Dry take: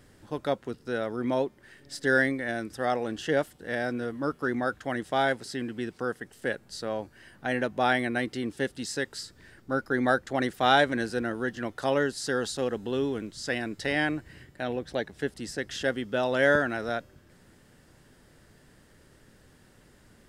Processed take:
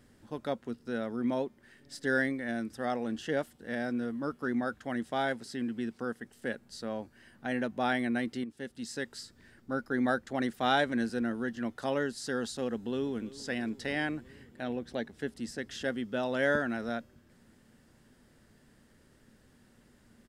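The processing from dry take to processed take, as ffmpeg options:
-filter_complex "[0:a]asplit=2[a][b];[b]afade=t=in:st=12.73:d=0.01,afade=t=out:st=13.36:d=0.01,aecho=0:1:330|660|990|1320|1650|1980|2310|2640|2970:0.125893|0.0944194|0.0708146|0.0531109|0.0398332|0.0298749|0.0224062|0.0168046|0.0126035[c];[a][c]amix=inputs=2:normalize=0,asplit=2[d][e];[d]atrim=end=8.44,asetpts=PTS-STARTPTS,afade=t=out:st=8.436:d=0.004:c=hsin:silence=0.223872[f];[e]atrim=start=8.44,asetpts=PTS-STARTPTS,afade=t=in:d=0.59:silence=0.223872[g];[f][g]concat=n=2:v=0:a=1,equalizer=f=230:t=o:w=0.27:g=9.5,volume=-6dB"

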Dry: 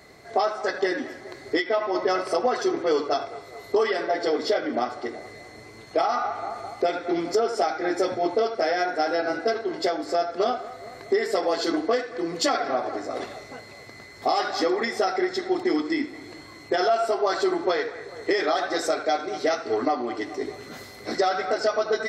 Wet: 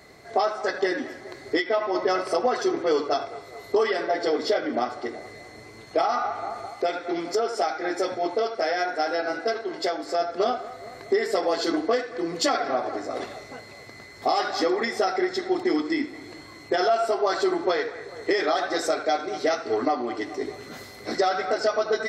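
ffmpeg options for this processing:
-filter_complex "[0:a]asettb=1/sr,asplit=3[a][b][c];[a]atrim=end=6.664[d];[b]atrim=start=6.66:end=10.2,asetpts=PTS-STARTPTS,afade=t=in:d=0.004:c=qsin,afade=t=out:st=3.536:d=0.004:c=qsin,lowshelf=f=340:g=-6.5[e];[c]atrim=start=10.196[f];[d][e]acrossfade=d=0.004:c1=hsin:c2=qsin[g];[g][f]acrossfade=d=0.004:c1=qsin:c2=hsin"

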